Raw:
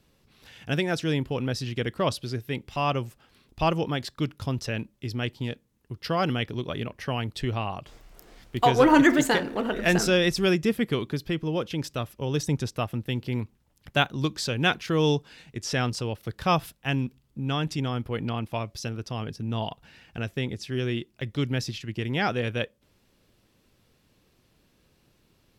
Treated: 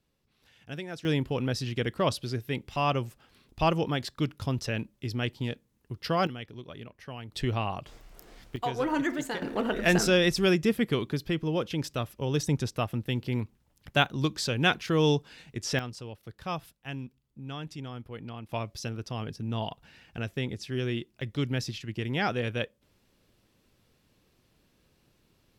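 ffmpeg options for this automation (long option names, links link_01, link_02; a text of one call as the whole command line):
ffmpeg -i in.wav -af "asetnsamples=nb_out_samples=441:pad=0,asendcmd='1.05 volume volume -1dB;6.27 volume volume -12dB;7.32 volume volume -0.5dB;8.56 volume volume -11dB;9.42 volume volume -1dB;15.79 volume volume -11dB;18.49 volume volume -2.5dB',volume=-12dB" out.wav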